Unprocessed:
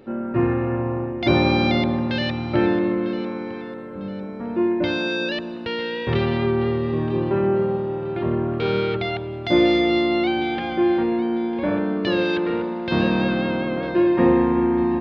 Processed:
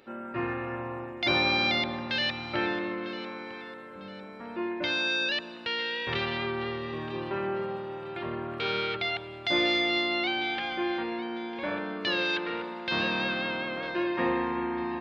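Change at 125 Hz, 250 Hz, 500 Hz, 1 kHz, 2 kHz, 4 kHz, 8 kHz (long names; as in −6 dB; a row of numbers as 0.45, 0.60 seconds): −15.5 dB, −13.5 dB, −11.5 dB, −5.5 dB, −0.5 dB, +0.5 dB, can't be measured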